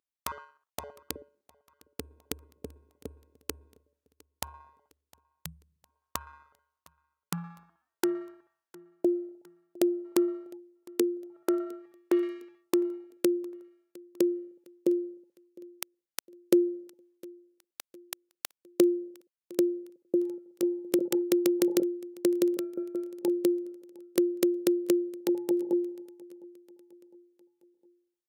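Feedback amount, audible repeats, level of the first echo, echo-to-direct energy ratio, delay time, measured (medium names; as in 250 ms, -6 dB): 49%, 2, -23.5 dB, -22.5 dB, 708 ms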